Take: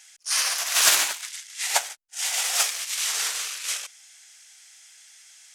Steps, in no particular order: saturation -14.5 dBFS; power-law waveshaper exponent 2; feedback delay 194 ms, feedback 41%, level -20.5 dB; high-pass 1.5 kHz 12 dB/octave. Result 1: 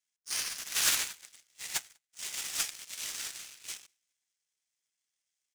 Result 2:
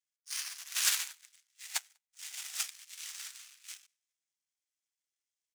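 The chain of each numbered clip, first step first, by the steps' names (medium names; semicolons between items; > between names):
feedback delay > saturation > high-pass > power-law waveshaper; feedback delay > power-law waveshaper > saturation > high-pass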